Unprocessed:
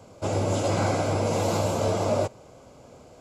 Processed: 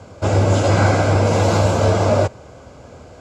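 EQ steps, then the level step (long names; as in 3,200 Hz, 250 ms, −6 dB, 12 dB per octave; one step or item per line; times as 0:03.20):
low-pass filter 7,500 Hz 12 dB per octave
parametric band 77 Hz +8.5 dB 0.89 octaves
parametric band 1,600 Hz +6.5 dB 0.51 octaves
+7.5 dB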